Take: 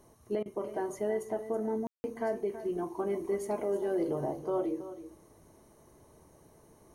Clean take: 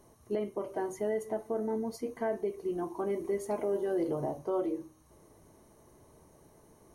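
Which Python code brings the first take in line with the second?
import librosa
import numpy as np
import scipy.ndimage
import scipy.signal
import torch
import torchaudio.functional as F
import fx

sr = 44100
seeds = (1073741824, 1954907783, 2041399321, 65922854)

y = fx.fix_ambience(x, sr, seeds[0], print_start_s=5.51, print_end_s=6.01, start_s=1.87, end_s=2.04)
y = fx.fix_interpolate(y, sr, at_s=(0.43,), length_ms=26.0)
y = fx.fix_echo_inverse(y, sr, delay_ms=325, level_db=-13.0)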